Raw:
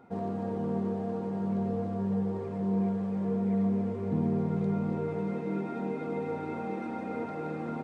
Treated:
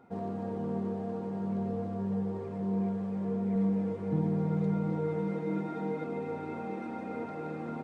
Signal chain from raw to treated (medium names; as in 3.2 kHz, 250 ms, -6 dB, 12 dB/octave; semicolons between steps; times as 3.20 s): 3.55–6.04 s: comb 6.3 ms, depth 66%; trim -2.5 dB